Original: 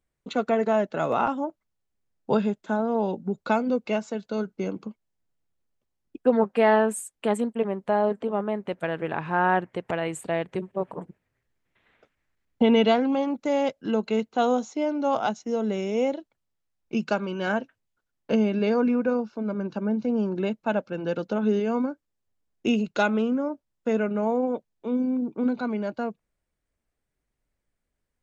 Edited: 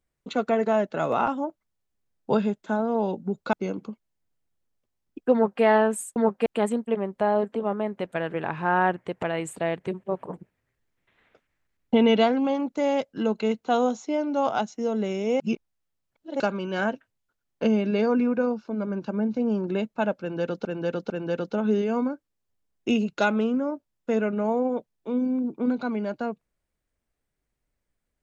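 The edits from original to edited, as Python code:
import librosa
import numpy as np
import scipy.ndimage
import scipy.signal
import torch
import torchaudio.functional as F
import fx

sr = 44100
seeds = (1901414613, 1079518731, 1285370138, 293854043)

y = fx.edit(x, sr, fx.cut(start_s=3.53, length_s=0.98),
    fx.duplicate(start_s=6.31, length_s=0.3, to_s=7.14),
    fx.reverse_span(start_s=16.08, length_s=1.0),
    fx.repeat(start_s=20.88, length_s=0.45, count=3), tone=tone)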